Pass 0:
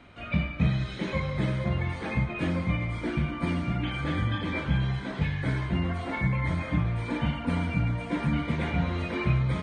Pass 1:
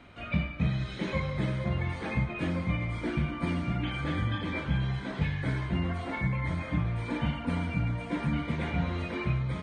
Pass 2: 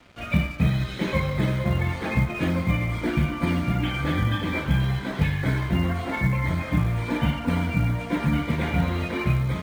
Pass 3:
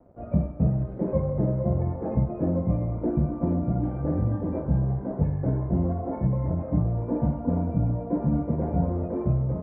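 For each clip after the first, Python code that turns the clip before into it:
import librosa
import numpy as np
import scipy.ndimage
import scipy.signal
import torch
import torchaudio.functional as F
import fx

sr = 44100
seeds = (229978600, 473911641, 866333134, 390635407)

y1 = fx.rider(x, sr, range_db=10, speed_s=0.5)
y1 = y1 * 10.0 ** (-2.5 / 20.0)
y2 = np.sign(y1) * np.maximum(np.abs(y1) - 10.0 ** (-53.5 / 20.0), 0.0)
y2 = fx.quant_float(y2, sr, bits=4)
y2 = y2 * 10.0 ** (7.0 / 20.0)
y3 = fx.ladder_lowpass(y2, sr, hz=770.0, resonance_pct=35)
y3 = y3 * 10.0 ** (6.0 / 20.0)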